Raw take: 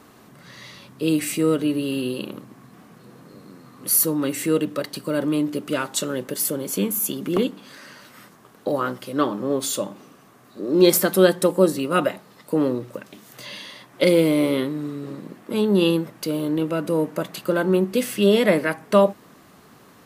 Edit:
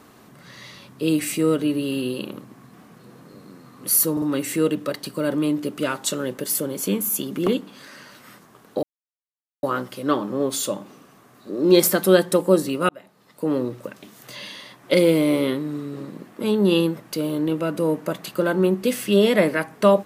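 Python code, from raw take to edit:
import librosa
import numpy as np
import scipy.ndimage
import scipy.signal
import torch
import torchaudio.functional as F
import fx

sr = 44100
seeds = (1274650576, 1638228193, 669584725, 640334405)

y = fx.edit(x, sr, fx.stutter(start_s=4.12, slice_s=0.05, count=3),
    fx.insert_silence(at_s=8.73, length_s=0.8),
    fx.fade_in_span(start_s=11.99, length_s=0.79), tone=tone)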